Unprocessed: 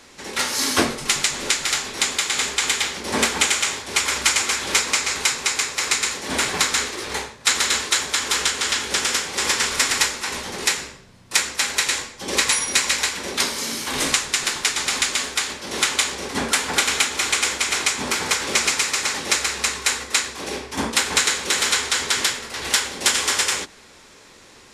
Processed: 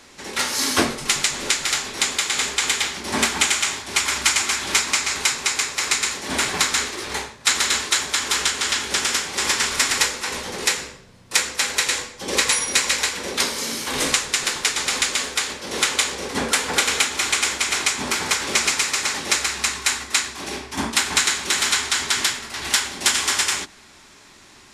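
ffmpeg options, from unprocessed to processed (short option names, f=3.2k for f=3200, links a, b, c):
-af "asetnsamples=n=441:p=0,asendcmd='2.88 equalizer g -11.5;5.12 equalizer g -4.5;9.97 equalizer g 4.5;17.06 equalizer g -4.5;19.47 equalizer g -14.5',equalizer=f=490:t=o:w=0.24:g=-2"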